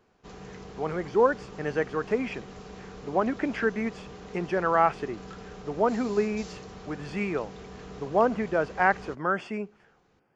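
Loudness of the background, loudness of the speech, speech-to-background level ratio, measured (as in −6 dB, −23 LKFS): −44.0 LKFS, −28.0 LKFS, 16.0 dB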